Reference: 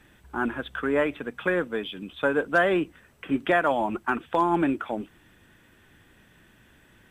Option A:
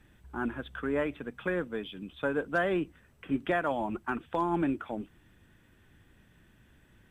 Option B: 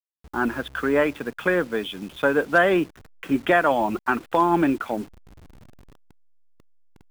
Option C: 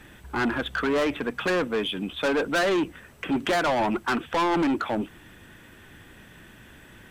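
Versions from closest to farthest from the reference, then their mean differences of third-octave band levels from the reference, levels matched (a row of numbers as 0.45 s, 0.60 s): A, B, C; 2.0 dB, 5.0 dB, 7.0 dB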